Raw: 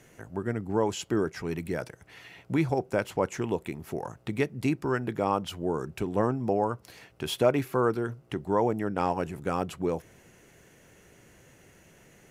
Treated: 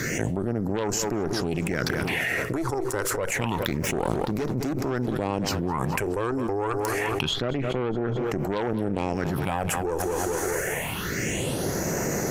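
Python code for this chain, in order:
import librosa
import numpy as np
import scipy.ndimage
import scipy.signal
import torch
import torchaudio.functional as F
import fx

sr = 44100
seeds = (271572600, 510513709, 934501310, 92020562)

p1 = fx.env_lowpass_down(x, sr, base_hz=1800.0, full_db=-24.0, at=(6.72, 8.26))
p2 = fx.low_shelf(p1, sr, hz=120.0, db=-9.5)
p3 = fx.leveller(p2, sr, passes=2, at=(3.62, 4.73))
p4 = fx.phaser_stages(p3, sr, stages=6, low_hz=170.0, high_hz=3200.0, hz=0.27, feedback_pct=25)
p5 = fx.cheby_harmonics(p4, sr, harmonics=(4, 6), levels_db=(-14, -12), full_scale_db=-13.0)
p6 = p5 + fx.echo_feedback(p5, sr, ms=209, feedback_pct=53, wet_db=-20.0, dry=0)
p7 = fx.env_flatten(p6, sr, amount_pct=100)
y = p7 * librosa.db_to_amplitude(-8.5)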